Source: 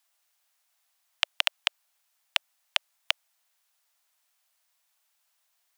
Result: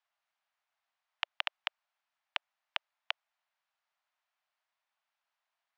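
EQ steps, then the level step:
high-pass filter 650 Hz
head-to-tape spacing loss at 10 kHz 33 dB
0.0 dB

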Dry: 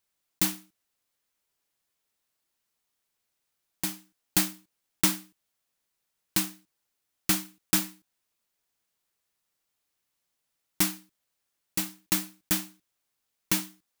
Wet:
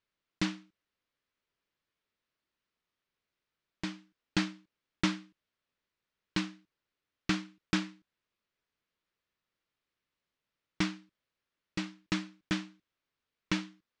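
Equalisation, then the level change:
Gaussian smoothing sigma 2 samples
parametric band 780 Hz −7 dB 0.48 octaves
0.0 dB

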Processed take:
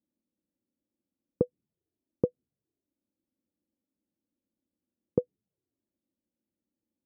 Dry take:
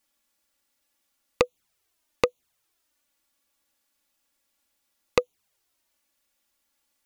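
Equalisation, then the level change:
flat-topped band-pass 240 Hz, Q 0.82
spectral tilt −4 dB per octave
−3.5 dB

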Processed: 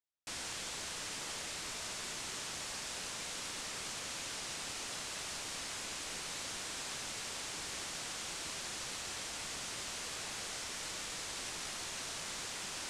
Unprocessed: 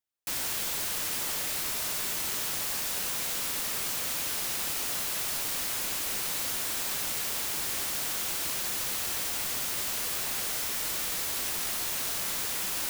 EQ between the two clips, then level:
low-pass filter 8,500 Hz 24 dB per octave
−6.5 dB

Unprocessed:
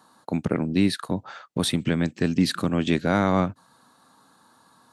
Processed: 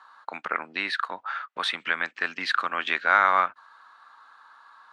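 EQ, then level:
high-pass with resonance 1,300 Hz, resonance Q 1.8
low-pass filter 2,700 Hz 12 dB per octave
+5.5 dB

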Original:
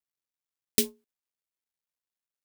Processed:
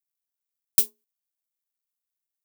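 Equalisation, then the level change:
RIAA equalisation recording
parametric band 82 Hz +13.5 dB 0.55 octaves
−10.5 dB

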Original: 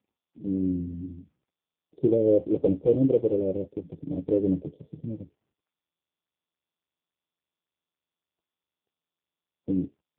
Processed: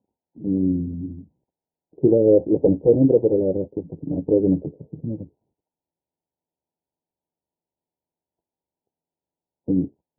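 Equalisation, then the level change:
linear-phase brick-wall low-pass 1,000 Hz
+6.0 dB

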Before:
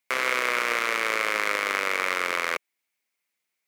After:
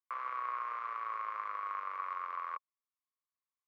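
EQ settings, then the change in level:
resonant band-pass 1,100 Hz, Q 13
high-frequency loss of the air 55 metres
0.0 dB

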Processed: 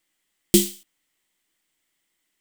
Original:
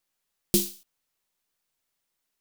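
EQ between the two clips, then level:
thirty-one-band graphic EQ 200 Hz +5 dB, 315 Hz +11 dB, 2,000 Hz +11 dB, 3,150 Hz +8 dB, 8,000 Hz +7 dB
+2.5 dB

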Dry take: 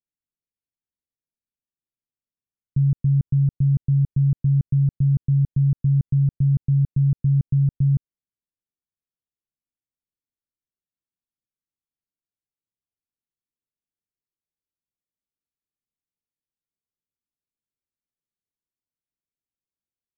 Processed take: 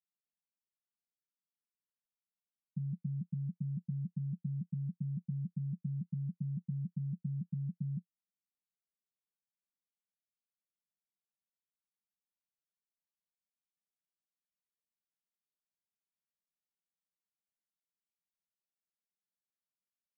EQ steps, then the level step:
flat-topped band-pass 190 Hz, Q 4.1
−3.0 dB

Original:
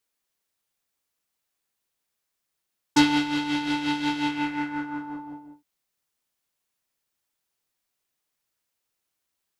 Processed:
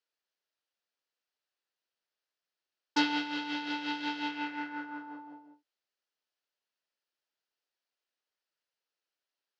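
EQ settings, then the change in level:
loudspeaker in its box 440–4,900 Hz, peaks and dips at 790 Hz −4 dB, 1,100 Hz −6 dB, 2,200 Hz −6 dB, 3,600 Hz −4 dB
−3.0 dB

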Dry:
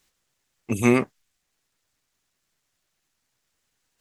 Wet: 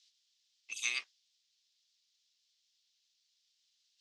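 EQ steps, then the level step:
flat-topped band-pass 4,300 Hz, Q 1.7
+5.5 dB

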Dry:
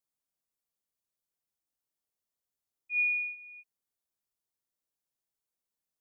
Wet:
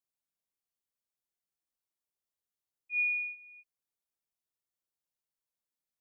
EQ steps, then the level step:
dynamic equaliser 2,300 Hz, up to +3 dB, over −38 dBFS
−4.5 dB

